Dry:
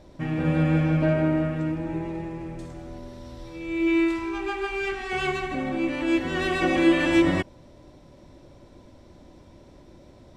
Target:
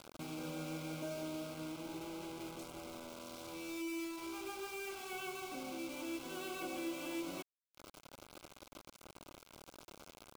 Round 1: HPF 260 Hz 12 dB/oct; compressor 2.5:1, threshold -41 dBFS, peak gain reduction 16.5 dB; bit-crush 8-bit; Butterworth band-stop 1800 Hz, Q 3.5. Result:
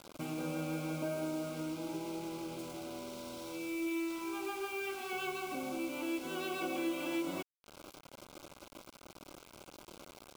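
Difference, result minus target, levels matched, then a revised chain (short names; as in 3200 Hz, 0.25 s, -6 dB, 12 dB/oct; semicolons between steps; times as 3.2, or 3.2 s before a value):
compressor: peak gain reduction -5.5 dB
HPF 260 Hz 12 dB/oct; compressor 2.5:1, threshold -50.5 dBFS, peak gain reduction 22.5 dB; bit-crush 8-bit; Butterworth band-stop 1800 Hz, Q 3.5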